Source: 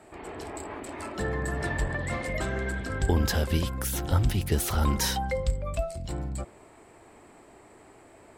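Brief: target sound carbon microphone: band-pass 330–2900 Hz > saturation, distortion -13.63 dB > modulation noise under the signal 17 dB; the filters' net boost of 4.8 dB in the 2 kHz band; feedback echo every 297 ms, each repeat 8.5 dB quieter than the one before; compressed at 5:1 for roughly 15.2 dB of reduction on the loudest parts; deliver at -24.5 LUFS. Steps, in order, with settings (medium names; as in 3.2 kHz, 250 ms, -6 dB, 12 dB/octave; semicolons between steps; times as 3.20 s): peaking EQ 2 kHz +6.5 dB; compression 5:1, threshold -37 dBFS; band-pass 330–2900 Hz; feedback delay 297 ms, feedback 38%, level -8.5 dB; saturation -38.5 dBFS; modulation noise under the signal 17 dB; trim +21 dB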